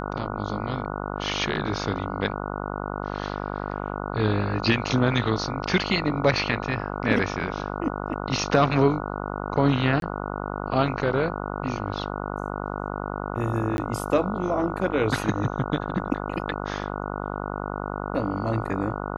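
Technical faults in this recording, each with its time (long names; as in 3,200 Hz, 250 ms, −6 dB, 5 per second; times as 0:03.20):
mains buzz 50 Hz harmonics 29 −31 dBFS
0:10.00–0:10.02: drop-out 22 ms
0:13.77–0:13.78: drop-out 11 ms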